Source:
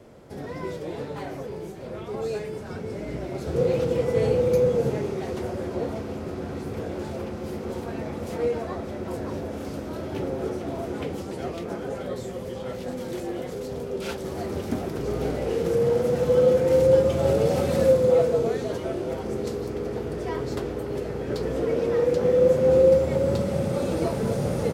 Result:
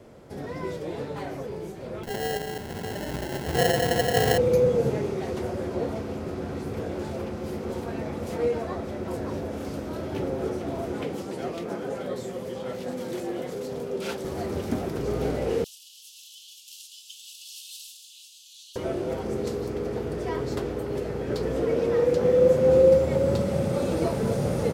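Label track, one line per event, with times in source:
2.030000	4.380000	sample-rate reducer 1200 Hz
11.010000	14.250000	HPF 130 Hz
15.640000	18.760000	steep high-pass 2800 Hz 96 dB/oct

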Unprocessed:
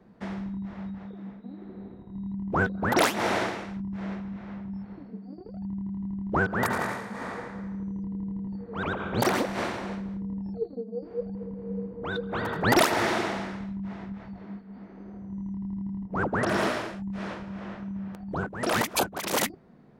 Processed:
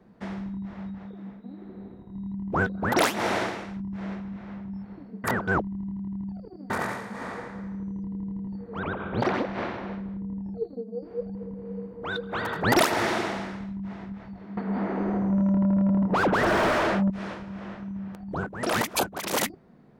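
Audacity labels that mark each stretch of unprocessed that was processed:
5.240000	6.700000	reverse
8.790000	10.580000	air absorption 240 m
11.650000	12.610000	tilt shelf lows -3.5 dB, about 650 Hz
14.570000	17.100000	overdrive pedal drive 34 dB, tone 1000 Hz, clips at -13.5 dBFS

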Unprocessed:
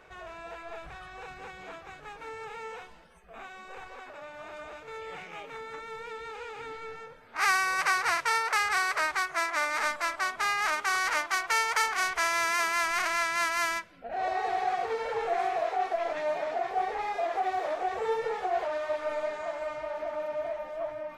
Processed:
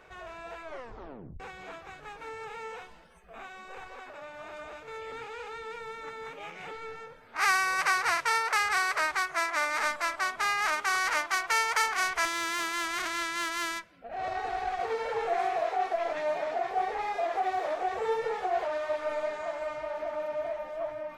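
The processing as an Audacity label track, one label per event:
0.640000	0.640000	tape stop 0.76 s
5.120000	6.710000	reverse
12.250000	14.800000	tube stage drive 20 dB, bias 0.65

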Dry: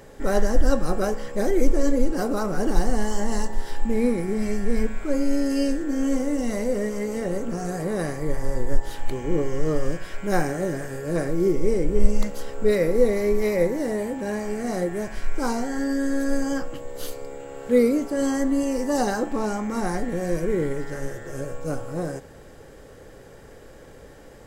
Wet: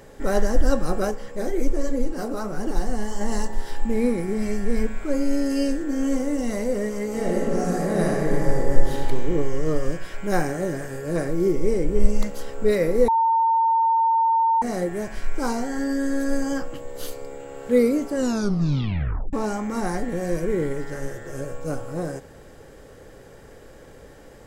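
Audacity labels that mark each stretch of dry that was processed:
1.110000	3.210000	flange 1.3 Hz, delay 5.1 ms, depth 9.2 ms, regen -42%
7.080000	9.030000	reverb throw, RT60 2.3 s, DRR -2 dB
13.080000	14.620000	bleep 907 Hz -16 dBFS
18.150000	18.150000	tape stop 1.18 s

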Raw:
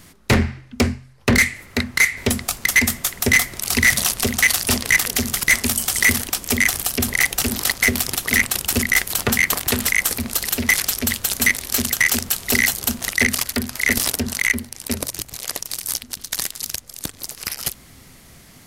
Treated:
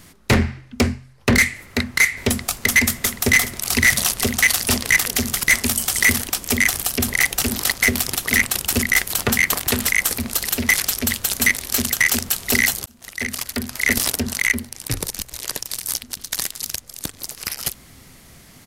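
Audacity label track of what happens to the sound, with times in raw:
2.240000	2.720000	echo throw 0.39 s, feedback 65%, level -8 dB
12.860000	13.840000	fade in
14.880000	15.820000	frequency shift -120 Hz

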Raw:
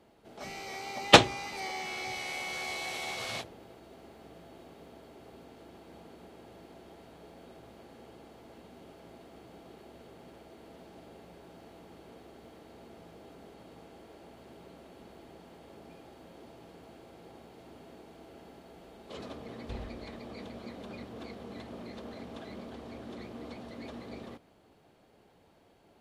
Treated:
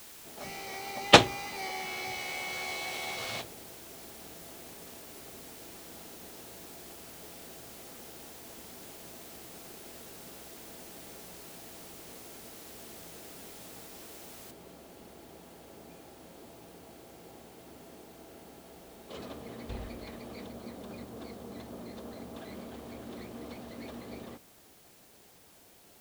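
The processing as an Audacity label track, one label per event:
14.510000	14.510000	noise floor step -50 dB -60 dB
20.460000	22.380000	bell 2400 Hz -4 dB 1.3 oct

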